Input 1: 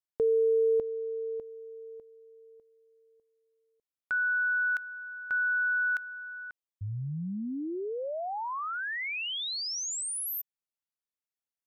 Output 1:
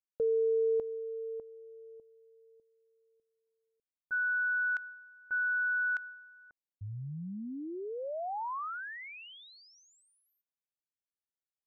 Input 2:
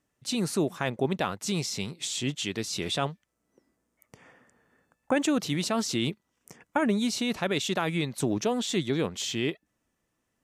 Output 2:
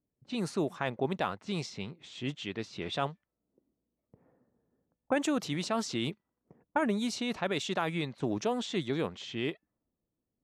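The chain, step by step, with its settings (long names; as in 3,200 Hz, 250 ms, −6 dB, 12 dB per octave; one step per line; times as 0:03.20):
low-pass that shuts in the quiet parts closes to 490 Hz, open at −23 dBFS
dynamic equaliser 920 Hz, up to +4 dB, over −39 dBFS, Q 0.73
level −5.5 dB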